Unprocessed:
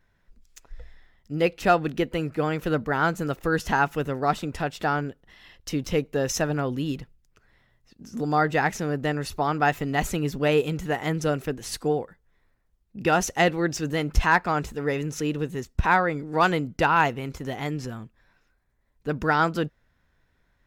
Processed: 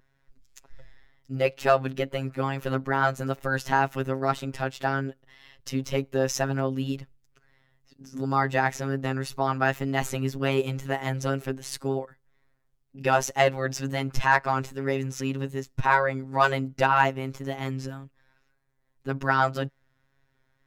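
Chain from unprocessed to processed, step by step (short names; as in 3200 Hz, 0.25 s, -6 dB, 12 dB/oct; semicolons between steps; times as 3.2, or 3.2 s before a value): dynamic EQ 800 Hz, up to +3 dB, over -33 dBFS, Q 0.77; robotiser 134 Hz; wow and flutter 27 cents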